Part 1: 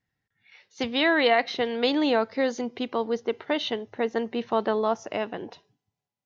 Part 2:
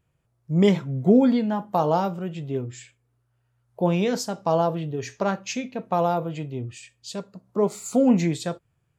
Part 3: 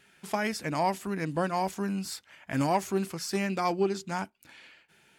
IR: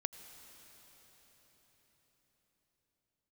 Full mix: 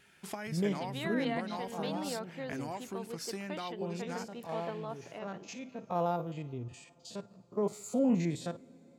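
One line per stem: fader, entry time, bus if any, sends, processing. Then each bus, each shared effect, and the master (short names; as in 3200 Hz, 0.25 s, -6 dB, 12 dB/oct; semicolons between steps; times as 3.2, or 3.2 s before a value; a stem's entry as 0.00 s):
-16.5 dB, 0.00 s, no send, dry
-10.0 dB, 0.00 s, send -13.5 dB, stepped spectrum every 50 ms; auto duck -12 dB, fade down 1.30 s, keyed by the third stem
-2.0 dB, 0.00 s, no send, compressor 6:1, threshold -36 dBFS, peak gain reduction 14 dB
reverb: on, RT60 5.2 s, pre-delay 78 ms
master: dry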